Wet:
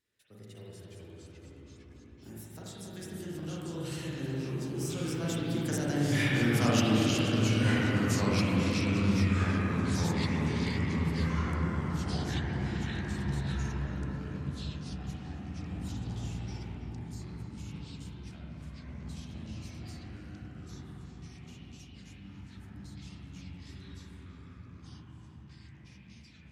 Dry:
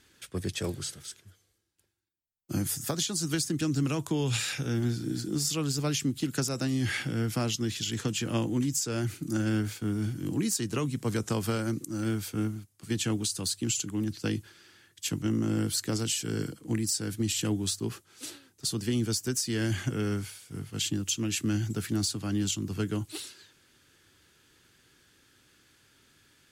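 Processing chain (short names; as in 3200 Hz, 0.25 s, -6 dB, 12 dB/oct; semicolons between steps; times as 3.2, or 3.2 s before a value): Doppler pass-by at 6.58, 38 m/s, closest 19 m; in parallel at -11.5 dB: soft clip -31 dBFS, distortion -11 dB; on the sum: darkening echo 0.275 s, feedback 68%, low-pass 1400 Hz, level -4 dB; spring tank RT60 1.9 s, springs 37/41/46 ms, chirp 45 ms, DRR -5 dB; echoes that change speed 0.318 s, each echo -3 st, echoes 3; gain -2.5 dB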